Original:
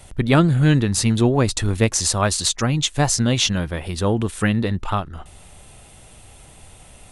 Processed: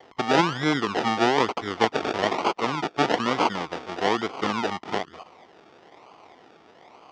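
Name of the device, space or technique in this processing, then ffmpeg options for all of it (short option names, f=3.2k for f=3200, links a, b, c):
circuit-bent sampling toy: -af "acrusher=samples=34:mix=1:aa=0.000001:lfo=1:lforange=20.4:lforate=1.1,highpass=500,equalizer=f=570:t=q:w=4:g=-8,equalizer=f=1.6k:t=q:w=4:g=-8,equalizer=f=2.6k:t=q:w=4:g=-6,equalizer=f=4.1k:t=q:w=4:g=-8,lowpass=f=4.6k:w=0.5412,lowpass=f=4.6k:w=1.3066,volume=4.5dB"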